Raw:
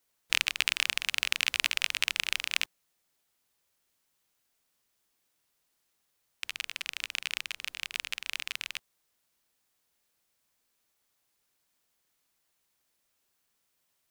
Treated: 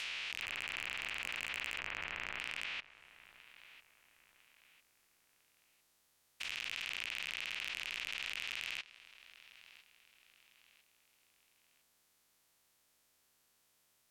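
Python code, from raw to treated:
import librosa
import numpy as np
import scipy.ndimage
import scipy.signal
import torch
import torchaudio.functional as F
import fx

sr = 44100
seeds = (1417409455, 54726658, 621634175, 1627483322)

p1 = fx.spec_steps(x, sr, hold_ms=400)
p2 = fx.env_lowpass_down(p1, sr, base_hz=2200.0, full_db=-36.0)
p3 = fx.air_absorb(p2, sr, metres=450.0, at=(1.79, 2.39))
p4 = p3 + fx.echo_feedback(p3, sr, ms=1002, feedback_pct=37, wet_db=-21, dry=0)
p5 = np.clip(10.0 ** (32.0 / 20.0) * p4, -1.0, 1.0) / 10.0 ** (32.0 / 20.0)
p6 = fx.over_compress(p5, sr, threshold_db=-47.0, ratio=-1.0)
p7 = p5 + F.gain(torch.from_numpy(p6), 2.5).numpy()
y = F.gain(torch.from_numpy(p7), -3.0).numpy()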